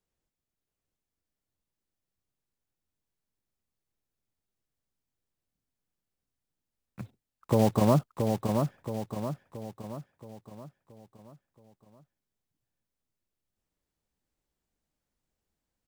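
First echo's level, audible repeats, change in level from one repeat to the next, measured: -5.0 dB, 5, -6.5 dB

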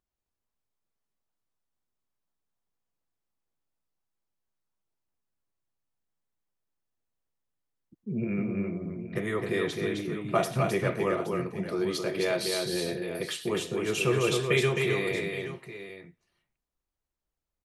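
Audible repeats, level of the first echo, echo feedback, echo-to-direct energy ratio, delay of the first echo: 3, -19.5 dB, no regular repeats, -3.5 dB, 109 ms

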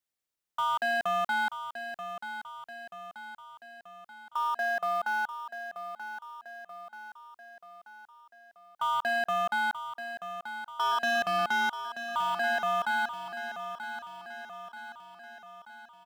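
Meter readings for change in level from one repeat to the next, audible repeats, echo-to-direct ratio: -5.5 dB, 5, -8.5 dB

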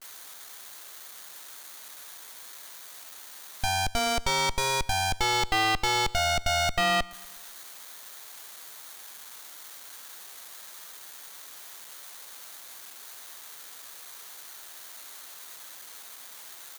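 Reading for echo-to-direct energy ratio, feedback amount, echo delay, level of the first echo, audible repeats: -20.5 dB, 51%, 120 ms, -22.0 dB, 3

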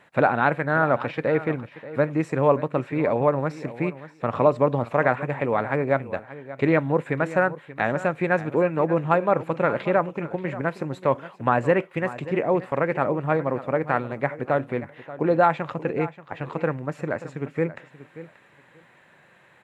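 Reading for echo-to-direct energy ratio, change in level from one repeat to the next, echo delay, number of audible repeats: -15.5 dB, -16.0 dB, 582 ms, 2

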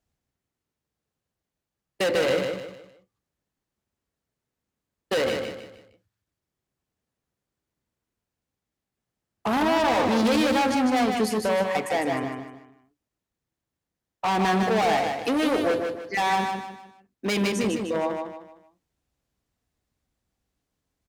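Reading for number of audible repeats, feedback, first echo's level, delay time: 4, 36%, -5.0 dB, 153 ms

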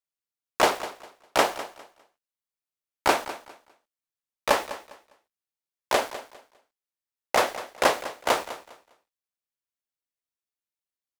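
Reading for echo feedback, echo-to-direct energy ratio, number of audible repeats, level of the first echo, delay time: 24%, -14.5 dB, 2, -14.5 dB, 202 ms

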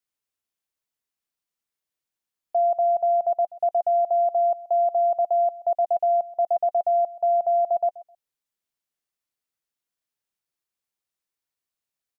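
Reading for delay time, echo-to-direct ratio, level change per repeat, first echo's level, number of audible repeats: 130 ms, -19.0 dB, -14.5 dB, -19.0 dB, 2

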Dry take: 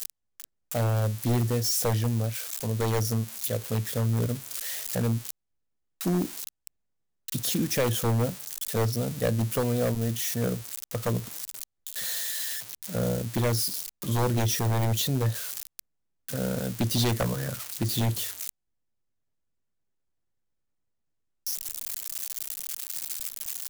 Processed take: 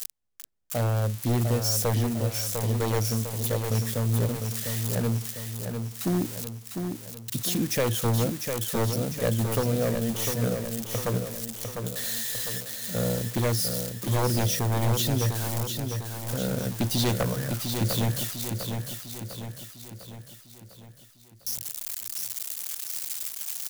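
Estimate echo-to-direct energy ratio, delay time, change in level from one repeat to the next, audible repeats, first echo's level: -4.5 dB, 701 ms, -5.5 dB, 6, -6.0 dB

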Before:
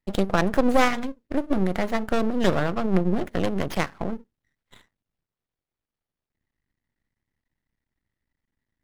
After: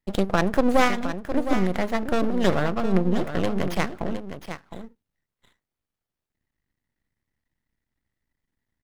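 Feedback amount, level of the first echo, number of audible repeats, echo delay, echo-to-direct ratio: no regular repeats, -10.0 dB, 1, 712 ms, -10.0 dB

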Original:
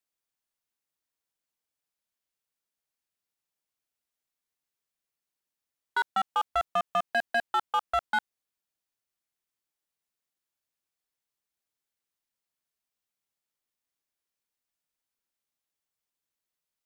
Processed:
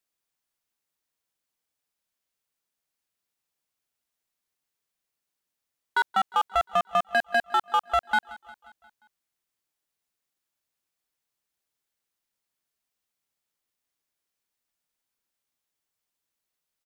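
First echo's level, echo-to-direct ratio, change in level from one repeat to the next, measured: -20.0 dB, -18.5 dB, -5.0 dB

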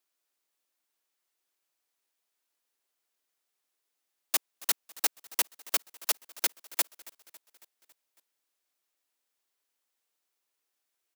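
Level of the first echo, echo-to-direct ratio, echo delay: -21.0 dB, -19.0 dB, 276 ms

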